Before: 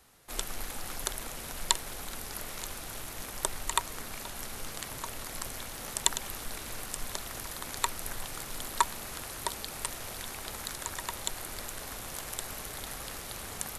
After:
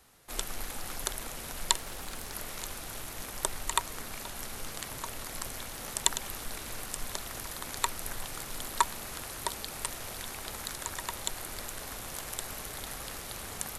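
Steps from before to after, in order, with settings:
0:01.77–0:02.34: highs frequency-modulated by the lows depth 0.34 ms

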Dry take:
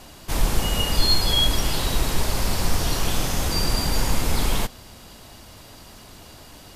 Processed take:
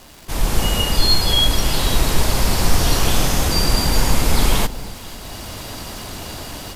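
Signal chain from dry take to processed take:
automatic gain control gain up to 14 dB
surface crackle 350 per second −30 dBFS
on a send: delay that swaps between a low-pass and a high-pass 246 ms, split 900 Hz, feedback 54%, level −13.5 dB
on the sum: level −1 dB

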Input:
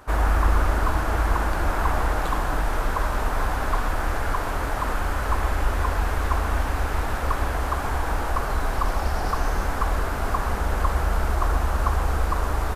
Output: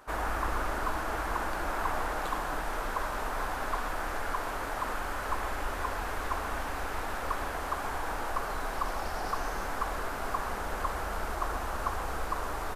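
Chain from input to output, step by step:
parametric band 63 Hz −12.5 dB 2.9 octaves
level −5.5 dB

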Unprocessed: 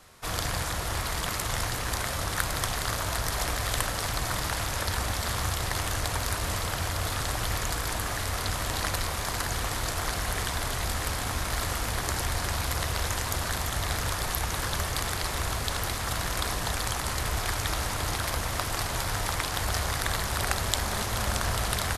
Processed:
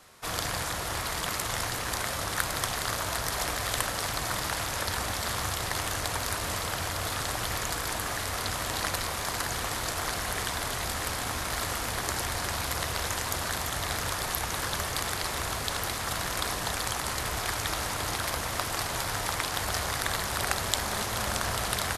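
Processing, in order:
low-shelf EQ 94 Hz −10.5 dB

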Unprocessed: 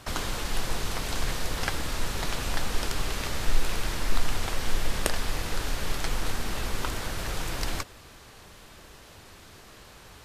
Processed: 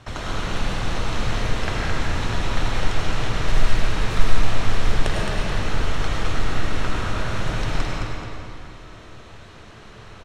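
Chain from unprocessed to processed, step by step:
parametric band 110 Hz +7.5 dB 0.59 octaves
notch filter 4,800 Hz, Q 10
noise that follows the level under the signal 19 dB
high-frequency loss of the air 90 metres
on a send: repeating echo 216 ms, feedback 41%, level −5 dB
on the sum: comb and all-pass reverb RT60 2.2 s, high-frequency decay 0.6×, pre-delay 60 ms, DRR −3.5 dB

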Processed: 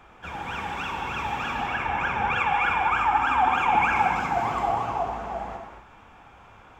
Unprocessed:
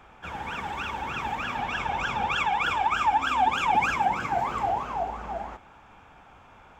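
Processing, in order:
0:01.67–0:03.96: high shelf with overshoot 2,900 Hz −7.5 dB, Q 1.5
reverb whose tail is shaped and stops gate 280 ms flat, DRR 2 dB

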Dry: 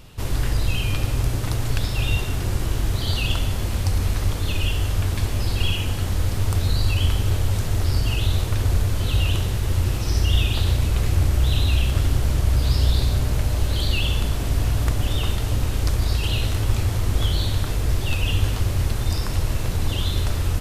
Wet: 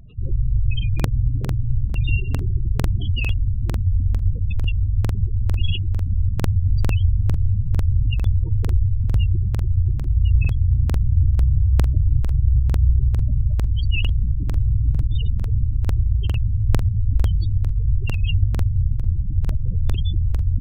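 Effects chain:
gate on every frequency bin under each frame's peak −15 dB strong
regular buffer underruns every 0.45 s, samples 2,048, repeat, from 0:00.95
level +2.5 dB

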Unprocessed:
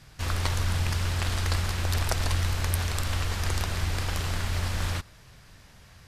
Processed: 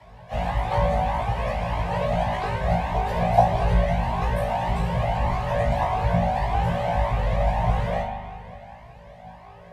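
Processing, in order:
drawn EQ curve 120 Hz 0 dB, 170 Hz −29 dB, 370 Hz −5 dB, 660 Hz +11 dB, 1,700 Hz +1 dB, 5,100 Hz −22 dB, 14,000 Hz −25 dB
in parallel at −0.5 dB: downward compressor, threshold −31 dBFS, peak gain reduction 13 dB
on the sum: time stretch by phase vocoder 1.6×
phaser with its sweep stopped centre 350 Hz, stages 6
random phases in short frames
frequency shifter +27 Hz
on a send: flutter between parallel walls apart 3 metres, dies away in 0.37 s
on the sum: spring reverb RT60 2.2 s, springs 40 ms, chirp 60 ms, DRR 3.5 dB
flanger whose copies keep moving one way rising 1.7 Hz
level +9 dB

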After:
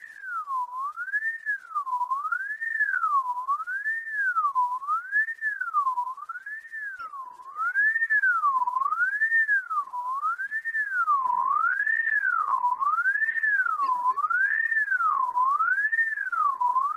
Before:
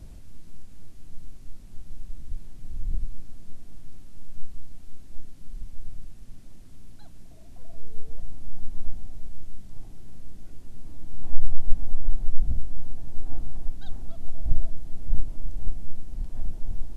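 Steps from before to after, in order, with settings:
spectral magnitudes quantised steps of 30 dB
wave folding −16.5 dBFS
ring modulator whose carrier an LFO sweeps 1,400 Hz, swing 30%, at 0.75 Hz

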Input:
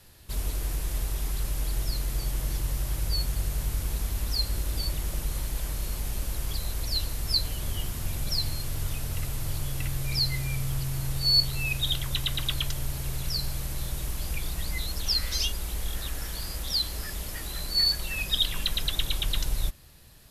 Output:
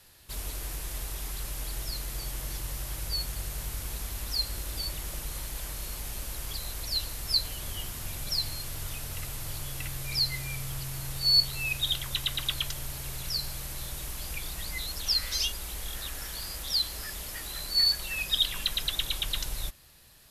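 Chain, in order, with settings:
low-shelf EQ 470 Hz −8 dB

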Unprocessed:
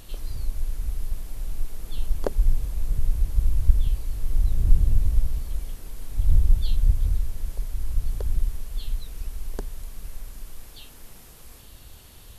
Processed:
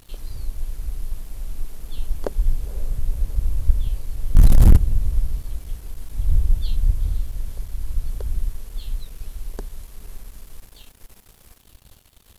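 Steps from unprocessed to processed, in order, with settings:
feedback delay with all-pass diffusion 501 ms, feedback 58%, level −15 dB
0:04.35–0:04.77: leveller curve on the samples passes 5
dead-zone distortion −46.5 dBFS

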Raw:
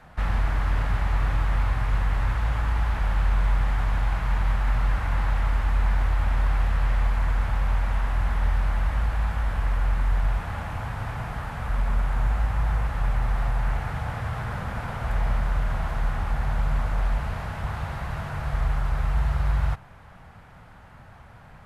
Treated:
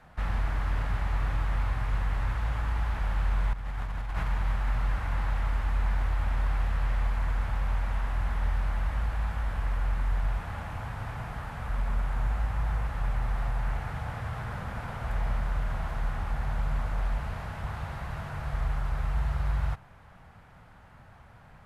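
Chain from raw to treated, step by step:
0:03.53–0:04.28: compressor whose output falls as the input rises −25 dBFS, ratio −0.5
level −5 dB

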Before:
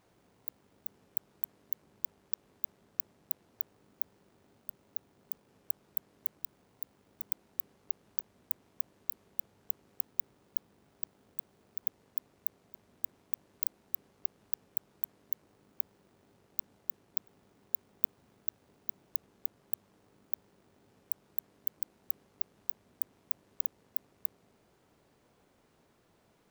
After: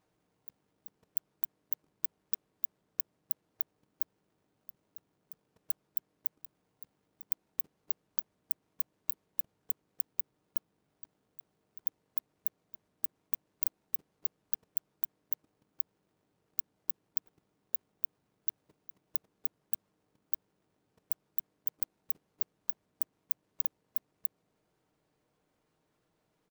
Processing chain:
comb filter 6.5 ms, depth 33%
output level in coarse steps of 16 dB
level +2.5 dB

